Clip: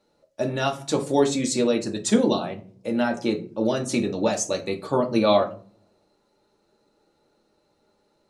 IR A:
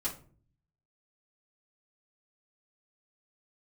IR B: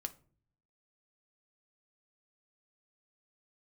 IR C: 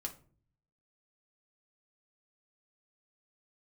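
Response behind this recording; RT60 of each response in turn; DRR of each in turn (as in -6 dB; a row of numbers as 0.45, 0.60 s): C; 0.45, 0.45, 0.45 s; -8.5, 7.0, 1.0 dB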